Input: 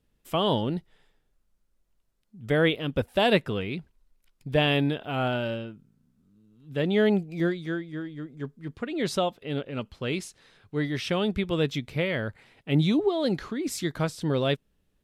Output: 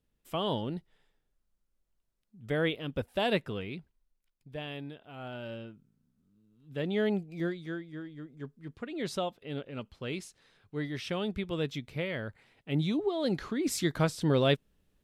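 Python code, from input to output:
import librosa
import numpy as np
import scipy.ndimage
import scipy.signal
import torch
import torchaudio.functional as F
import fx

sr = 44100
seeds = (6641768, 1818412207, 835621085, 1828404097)

y = fx.gain(x, sr, db=fx.line((3.69, -7.0), (4.55, -17.0), (5.17, -17.0), (5.65, -7.0), (12.99, -7.0), (13.66, 0.0)))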